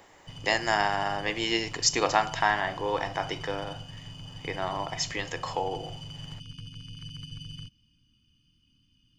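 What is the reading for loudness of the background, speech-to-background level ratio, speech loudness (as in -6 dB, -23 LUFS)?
-42.0 LUFS, 13.5 dB, -28.5 LUFS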